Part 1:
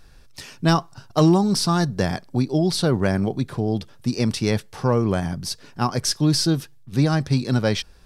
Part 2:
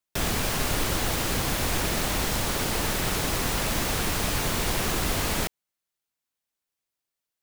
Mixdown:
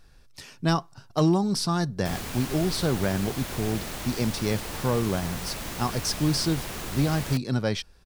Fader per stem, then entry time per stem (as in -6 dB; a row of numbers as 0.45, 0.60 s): -5.5, -8.5 dB; 0.00, 1.90 s